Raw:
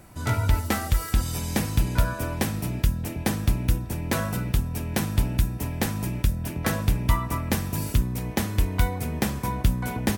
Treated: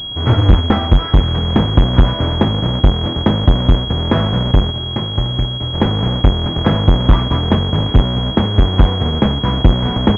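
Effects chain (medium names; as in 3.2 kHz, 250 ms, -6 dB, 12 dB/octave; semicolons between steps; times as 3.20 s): square wave that keeps the level; 4.71–5.74 s: feedback comb 120 Hz, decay 0.16 s, harmonics odd, mix 70%; class-D stage that switches slowly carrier 3.3 kHz; trim +7 dB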